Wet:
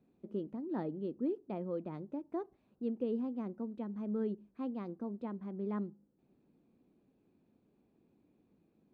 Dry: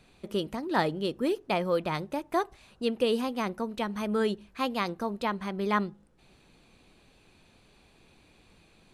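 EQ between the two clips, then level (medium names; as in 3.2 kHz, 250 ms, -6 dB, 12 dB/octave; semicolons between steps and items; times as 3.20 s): band-pass filter 260 Hz, Q 1.6; -4.0 dB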